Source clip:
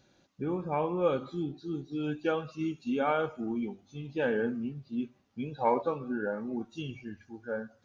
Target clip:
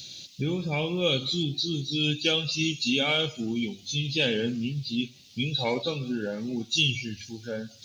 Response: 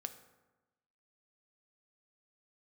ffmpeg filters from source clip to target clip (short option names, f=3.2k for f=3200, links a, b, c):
-filter_complex "[0:a]asplit=2[a][b];[b]acompressor=threshold=-43dB:ratio=6,volume=-1dB[c];[a][c]amix=inputs=2:normalize=0,aexciter=amount=3:drive=9.8:freq=2.3k,equalizer=f=125:t=o:w=1:g=10,equalizer=f=1k:t=o:w=1:g=-9,equalizer=f=4k:t=o:w=1:g=10"